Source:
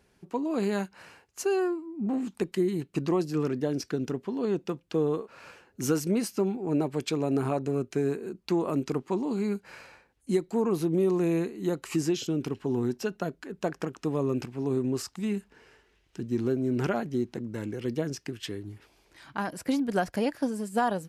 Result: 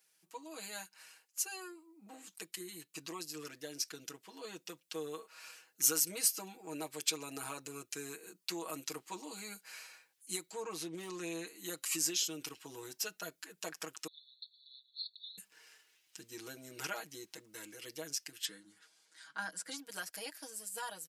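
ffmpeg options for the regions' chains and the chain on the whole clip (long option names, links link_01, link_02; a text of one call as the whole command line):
ffmpeg -i in.wav -filter_complex "[0:a]asettb=1/sr,asplit=3[link_01][link_02][link_03];[link_01]atrim=end=10.504[link_04];[link_02]atrim=start=10.5:end=11.47,asetpts=PTS-STARTPTS,afade=type=in:duration=0.004:curve=qsin,afade=type=out:start_time=0.966:duration=0.004:curve=qsin,lowpass=6600,asoftclip=type=hard:threshold=-18dB[link_05];[link_03]atrim=start=11.466[link_06];[link_04][link_05]acrossfade=duration=0.004:curve1=hsin:curve2=qsin[link_07];[link_07][link_06]acrossfade=duration=0.004:curve1=qsin:curve2=hsin,asettb=1/sr,asplit=3[link_08][link_09][link_10];[link_08]atrim=end=14.074[link_11];[link_09]atrim=start=14.07:end=15.38,asetpts=PTS-STARTPTS,afade=type=in:duration=0.004:curve=qsin,afade=type=out:start_time=1.306:duration=0.004:curve=qsin,asuperpass=centerf=3900:order=20:qfactor=3.8,aemphasis=mode=production:type=75kf[link_12];[link_10]atrim=start=15.376[link_13];[link_11][link_12]acrossfade=duration=0.004:curve1=hsin:curve2=qsin[link_14];[link_14][link_13]acrossfade=duration=0.004:curve1=qsin:curve2=hsin,asettb=1/sr,asplit=3[link_15][link_16][link_17];[link_15]atrim=end=18.454[link_18];[link_16]atrim=start=18.45:end=19.78,asetpts=PTS-STARTPTS,afade=type=in:duration=0.004:curve=qsin,afade=type=out:start_time=1.326:duration=0.004:curve=qsin,highpass=100,equalizer=frequency=120:width_type=q:width=4:gain=-9,equalizer=frequency=190:width_type=q:width=4:gain=10,equalizer=frequency=430:width_type=q:width=4:gain=6,equalizer=frequency=1500:width_type=q:width=4:gain=8,equalizer=frequency=2500:width_type=q:width=4:gain=-7,equalizer=frequency=5500:width_type=q:width=4:gain=-3,lowpass=frequency=9100:width=0.5412,lowpass=frequency=9100:width=1.3066,bandreject=frequency=400:width=6[link_19];[link_17]atrim=start=19.776[link_20];[link_18][link_19]acrossfade=duration=0.004:curve1=hsin:curve2=qsin[link_21];[link_21][link_20]acrossfade=duration=0.004:curve1=qsin:curve2=hsin,aderivative,aecho=1:1:6.3:0.99,dynaudnorm=framelen=900:gausssize=9:maxgain=5dB" out.wav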